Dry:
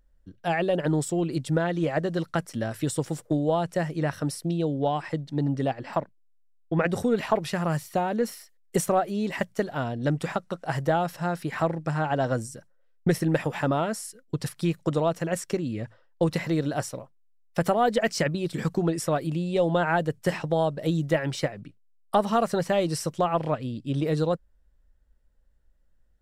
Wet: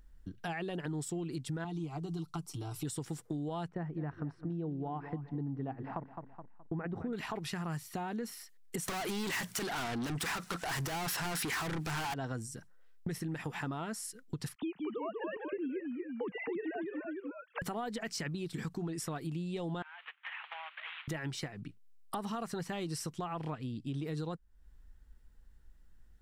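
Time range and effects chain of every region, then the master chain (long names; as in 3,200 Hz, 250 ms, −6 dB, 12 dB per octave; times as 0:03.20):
0:01.64–0:02.85: comb filter 6.8 ms, depth 50% + downward compressor 2.5 to 1, threshold −26 dBFS + phaser with its sweep stopped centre 350 Hz, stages 8
0:03.68–0:07.13: low-pass filter 1,200 Hz + repeating echo 211 ms, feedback 27%, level −14.5 dB
0:08.88–0:12.14: mid-hump overdrive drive 36 dB, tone 6,100 Hz, clips at −11.5 dBFS + high-shelf EQ 8,100 Hz +9.5 dB
0:14.55–0:17.62: three sine waves on the formant tracks + delay with pitch and tempo change per echo 168 ms, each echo −1 semitone, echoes 2, each echo −6 dB
0:19.82–0:21.08: variable-slope delta modulation 16 kbit/s + Bessel high-pass filter 1,500 Hz, order 8 + downward compressor 12 to 1, threshold −41 dBFS
whole clip: parametric band 570 Hz −14 dB 0.37 octaves; brickwall limiter −20.5 dBFS; downward compressor 3 to 1, threshold −47 dBFS; level +6 dB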